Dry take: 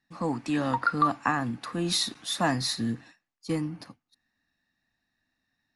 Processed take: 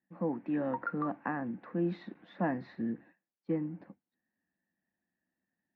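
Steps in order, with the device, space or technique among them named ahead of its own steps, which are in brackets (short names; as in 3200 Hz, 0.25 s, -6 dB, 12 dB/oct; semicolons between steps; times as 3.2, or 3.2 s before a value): bass cabinet (speaker cabinet 86–2000 Hz, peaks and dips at 120 Hz -8 dB, 190 Hz +9 dB, 350 Hz +7 dB, 530 Hz +7 dB, 1200 Hz -8 dB); gain -8 dB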